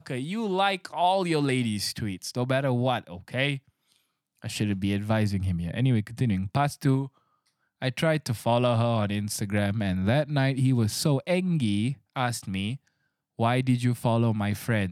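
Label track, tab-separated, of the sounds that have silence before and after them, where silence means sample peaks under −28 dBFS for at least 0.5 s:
4.440000	7.050000	sound
7.820000	12.740000	sound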